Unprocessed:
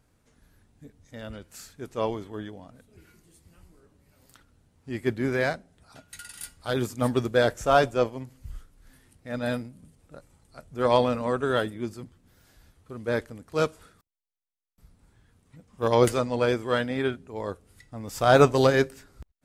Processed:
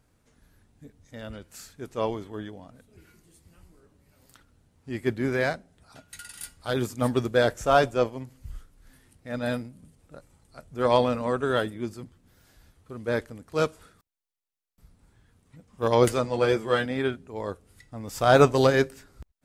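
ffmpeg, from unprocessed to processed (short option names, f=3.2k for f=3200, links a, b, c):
-filter_complex "[0:a]asettb=1/sr,asplit=3[a][b][c];[a]atrim=end=16.234[d];[b]atrim=start=16.23:end=16.86,asetpts=PTS-STARTPTS,afade=t=in:d=0.004:c=qsin,afade=t=out:st=0.626:d=0.004:c=qsin,asplit=2[e][f];[f]adelay=14,volume=-5dB[g];[e][g]amix=inputs=2:normalize=0,atrim=end_sample=27783[h];[c]atrim=start=16.856[i];[d][h]acrossfade=d=0.004:c1=hsin:c2=qsin[j];[j][i]acrossfade=d=0.004:c1=qsin:c2=hsin"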